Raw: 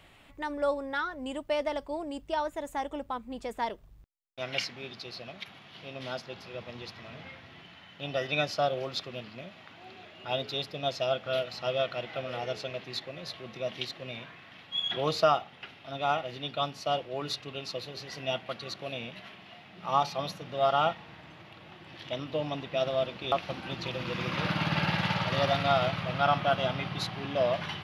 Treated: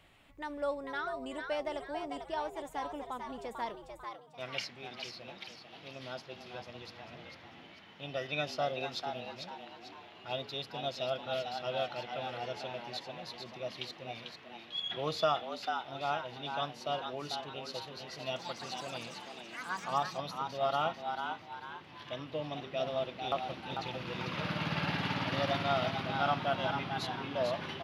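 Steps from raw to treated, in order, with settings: frequency-shifting echo 445 ms, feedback 39%, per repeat +110 Hz, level -6 dB; 18.15–20.61 s: ever faster or slower copies 211 ms, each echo +5 st, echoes 3, each echo -6 dB; trim -6 dB

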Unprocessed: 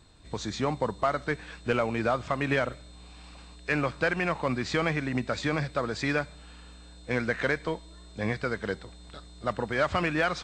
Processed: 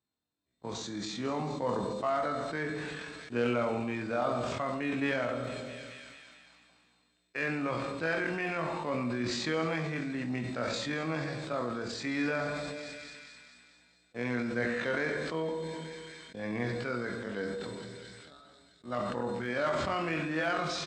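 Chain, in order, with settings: gate -41 dBFS, range -23 dB; high-pass 130 Hz 12 dB/octave; peaking EQ 260 Hz +3.5 dB 0.46 oct; tempo 0.5×; doubling 25 ms -7.5 dB; feedback echo behind a high-pass 220 ms, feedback 63%, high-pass 3.4 kHz, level -12.5 dB; on a send at -9 dB: reverberation RT60 1.0 s, pre-delay 20 ms; on the sum: decay stretcher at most 22 dB/s; trim -7.5 dB

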